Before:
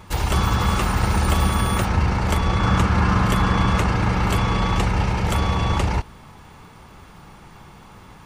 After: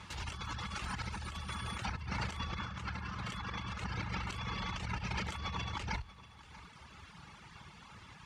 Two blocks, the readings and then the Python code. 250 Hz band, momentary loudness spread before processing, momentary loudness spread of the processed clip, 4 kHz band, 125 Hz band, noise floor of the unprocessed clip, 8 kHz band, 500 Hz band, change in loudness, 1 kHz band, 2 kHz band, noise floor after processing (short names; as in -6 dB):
-22.0 dB, 3 LU, 15 LU, -13.5 dB, -21.5 dB, -45 dBFS, -18.0 dB, -24.0 dB, -19.5 dB, -19.0 dB, -14.5 dB, -56 dBFS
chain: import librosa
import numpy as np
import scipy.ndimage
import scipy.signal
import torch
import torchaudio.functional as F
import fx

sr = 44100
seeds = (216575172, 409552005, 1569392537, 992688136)

p1 = fx.hum_notches(x, sr, base_hz=50, count=2)
p2 = fx.dereverb_blind(p1, sr, rt60_s=1.4)
p3 = scipy.signal.sosfilt(scipy.signal.butter(4, 50.0, 'highpass', fs=sr, output='sos'), p2)
p4 = fx.tone_stack(p3, sr, knobs='5-5-5')
p5 = fx.notch(p4, sr, hz=740.0, q=18.0)
p6 = fx.over_compress(p5, sr, threshold_db=-43.0, ratio=-1.0)
p7 = fx.air_absorb(p6, sr, metres=88.0)
p8 = p7 + fx.echo_single(p7, sr, ms=638, db=-18.0, dry=0)
y = F.gain(torch.from_numpy(p8), 3.5).numpy()